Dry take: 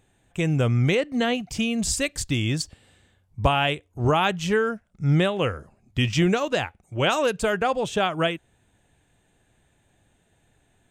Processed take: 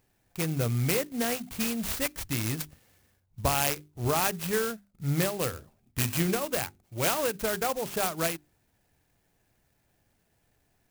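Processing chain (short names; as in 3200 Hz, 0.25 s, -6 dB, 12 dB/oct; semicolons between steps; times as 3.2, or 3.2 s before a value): bell 2400 Hz +6 dB 0.77 oct; notches 50/100/150/200/250/300/350/400 Hz; clock jitter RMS 0.085 ms; gain -6.5 dB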